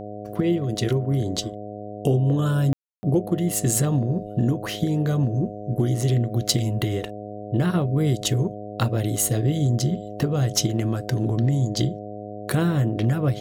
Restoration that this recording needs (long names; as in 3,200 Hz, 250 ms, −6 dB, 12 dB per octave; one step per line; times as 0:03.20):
hum removal 104 Hz, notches 7
ambience match 0:02.73–0:03.03